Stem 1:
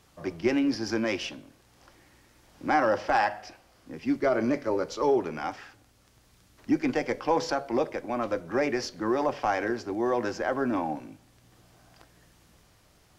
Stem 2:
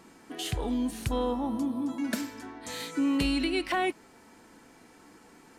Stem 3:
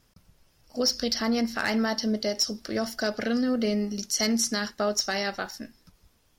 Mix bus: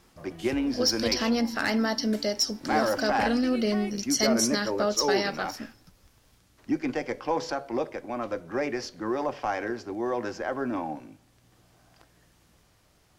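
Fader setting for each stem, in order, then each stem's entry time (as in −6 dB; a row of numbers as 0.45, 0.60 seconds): −2.5, −10.5, 0.0 decibels; 0.00, 0.00, 0.00 seconds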